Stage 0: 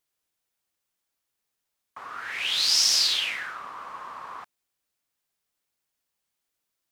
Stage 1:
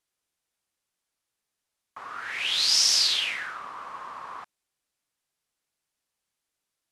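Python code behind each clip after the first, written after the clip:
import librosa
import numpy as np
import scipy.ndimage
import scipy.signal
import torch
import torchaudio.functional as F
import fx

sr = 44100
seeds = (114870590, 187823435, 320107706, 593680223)

y = scipy.signal.sosfilt(scipy.signal.butter(4, 12000.0, 'lowpass', fs=sr, output='sos'), x)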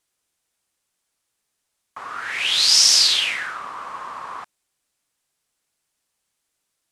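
y = fx.peak_eq(x, sr, hz=8300.0, db=3.5, octaves=0.77)
y = y * librosa.db_to_amplitude(6.0)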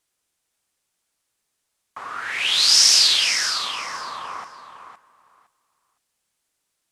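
y = fx.echo_feedback(x, sr, ms=512, feedback_pct=18, wet_db=-9.5)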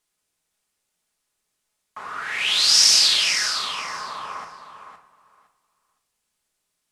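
y = fx.room_shoebox(x, sr, seeds[0], volume_m3=510.0, walls='furnished', distance_m=1.4)
y = y * librosa.db_to_amplitude(-2.0)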